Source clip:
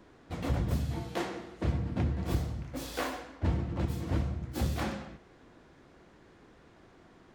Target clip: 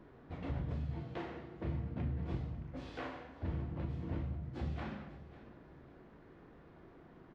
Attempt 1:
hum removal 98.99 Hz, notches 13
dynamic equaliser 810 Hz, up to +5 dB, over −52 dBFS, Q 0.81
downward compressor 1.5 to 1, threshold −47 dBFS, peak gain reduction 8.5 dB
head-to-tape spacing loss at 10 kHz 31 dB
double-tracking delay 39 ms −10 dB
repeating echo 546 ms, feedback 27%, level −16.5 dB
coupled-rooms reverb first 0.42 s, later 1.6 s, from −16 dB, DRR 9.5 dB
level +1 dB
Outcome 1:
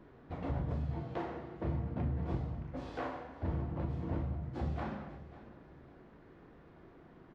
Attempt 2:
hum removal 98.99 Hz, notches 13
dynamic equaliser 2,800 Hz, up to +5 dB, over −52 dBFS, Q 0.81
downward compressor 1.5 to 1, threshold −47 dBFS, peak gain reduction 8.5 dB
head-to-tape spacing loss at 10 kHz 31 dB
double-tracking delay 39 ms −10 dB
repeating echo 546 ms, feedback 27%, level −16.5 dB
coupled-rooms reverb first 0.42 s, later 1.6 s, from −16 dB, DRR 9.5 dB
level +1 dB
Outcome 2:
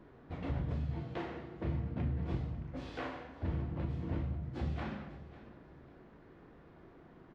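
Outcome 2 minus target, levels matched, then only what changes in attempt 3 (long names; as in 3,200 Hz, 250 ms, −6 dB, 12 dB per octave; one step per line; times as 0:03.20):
downward compressor: peak gain reduction −2.5 dB
change: downward compressor 1.5 to 1, threshold −54.5 dBFS, peak gain reduction 11 dB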